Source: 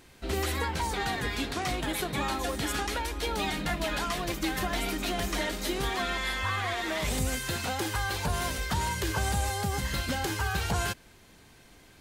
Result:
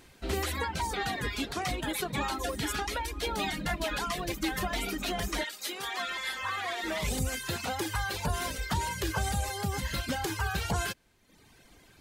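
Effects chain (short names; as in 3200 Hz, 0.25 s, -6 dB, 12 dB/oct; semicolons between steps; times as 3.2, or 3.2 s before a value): 5.43–6.83 HPF 1400 Hz -> 370 Hz 6 dB/oct; reverb removal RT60 0.94 s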